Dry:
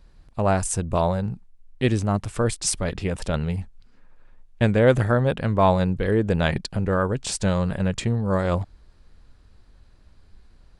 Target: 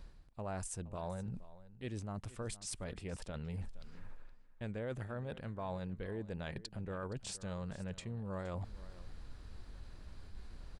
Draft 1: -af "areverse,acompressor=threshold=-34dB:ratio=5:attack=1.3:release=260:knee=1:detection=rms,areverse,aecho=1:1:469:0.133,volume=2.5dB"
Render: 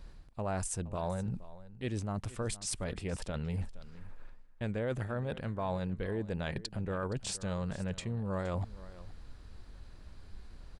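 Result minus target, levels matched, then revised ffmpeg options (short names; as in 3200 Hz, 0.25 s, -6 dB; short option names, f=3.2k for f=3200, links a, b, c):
compressor: peak gain reduction -6.5 dB
-af "areverse,acompressor=threshold=-42dB:ratio=5:attack=1.3:release=260:knee=1:detection=rms,areverse,aecho=1:1:469:0.133,volume=2.5dB"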